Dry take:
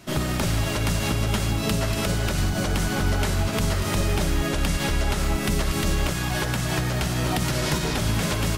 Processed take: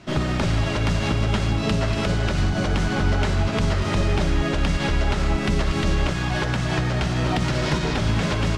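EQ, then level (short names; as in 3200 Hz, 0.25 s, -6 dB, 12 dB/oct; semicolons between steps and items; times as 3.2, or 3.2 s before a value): air absorption 110 m; +2.5 dB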